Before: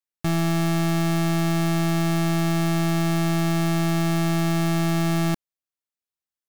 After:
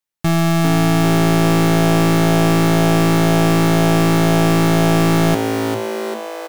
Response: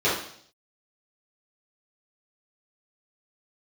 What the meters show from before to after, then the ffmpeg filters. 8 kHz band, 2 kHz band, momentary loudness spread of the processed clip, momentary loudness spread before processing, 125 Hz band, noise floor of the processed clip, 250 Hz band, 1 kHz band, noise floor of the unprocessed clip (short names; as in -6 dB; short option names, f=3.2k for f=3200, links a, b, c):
+8.0 dB, +9.0 dB, 6 LU, 1 LU, +7.0 dB, -28 dBFS, +8.0 dB, +10.0 dB, under -85 dBFS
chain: -filter_complex "[0:a]asplit=9[a][b][c][d][e][f][g][h][i];[b]adelay=397,afreqshift=110,volume=-6dB[j];[c]adelay=794,afreqshift=220,volume=-10.3dB[k];[d]adelay=1191,afreqshift=330,volume=-14.6dB[l];[e]adelay=1588,afreqshift=440,volume=-18.9dB[m];[f]adelay=1985,afreqshift=550,volume=-23.2dB[n];[g]adelay=2382,afreqshift=660,volume=-27.5dB[o];[h]adelay=2779,afreqshift=770,volume=-31.8dB[p];[i]adelay=3176,afreqshift=880,volume=-36.1dB[q];[a][j][k][l][m][n][o][p][q]amix=inputs=9:normalize=0,asplit=2[r][s];[1:a]atrim=start_sample=2205,asetrate=79380,aresample=44100[t];[s][t]afir=irnorm=-1:irlink=0,volume=-24dB[u];[r][u]amix=inputs=2:normalize=0,volume=6.5dB"